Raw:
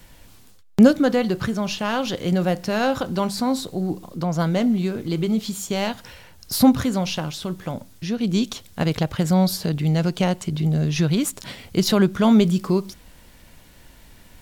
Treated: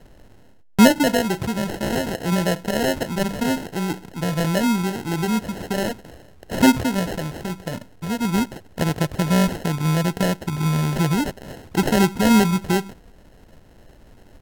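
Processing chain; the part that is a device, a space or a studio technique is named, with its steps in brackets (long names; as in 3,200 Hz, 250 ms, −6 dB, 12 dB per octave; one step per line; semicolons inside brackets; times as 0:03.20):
crushed at another speed (tape speed factor 1.25×; decimation without filtering 30×; tape speed factor 0.8×)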